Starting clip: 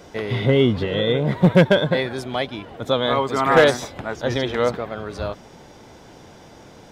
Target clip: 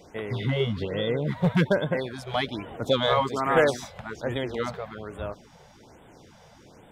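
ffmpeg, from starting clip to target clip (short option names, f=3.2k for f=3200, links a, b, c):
-filter_complex "[0:a]asettb=1/sr,asplit=3[a][b][c];[a]atrim=end=2.274[d];[b]atrim=start=2.27:end=3.29,asetpts=PTS-STARTPTS,afade=t=in:d=0.004:c=qsin,afade=t=out:st=1.016:d=0.004:c=qsin,acontrast=36[e];[c]atrim=start=3.286[f];[d][e]acrossfade=d=0.004:c1=hsin:c2=qsin[g];[g][f]acrossfade=d=0.004:c1=qsin:c2=hsin,afftfilt=real='re*(1-between(b*sr/1024,270*pow(5400/270,0.5+0.5*sin(2*PI*1.2*pts/sr))/1.41,270*pow(5400/270,0.5+0.5*sin(2*PI*1.2*pts/sr))*1.41))':imag='im*(1-between(b*sr/1024,270*pow(5400/270,0.5+0.5*sin(2*PI*1.2*pts/sr))/1.41,270*pow(5400/270,0.5+0.5*sin(2*PI*1.2*pts/sr))*1.41))':win_size=1024:overlap=0.75,volume=-6.5dB"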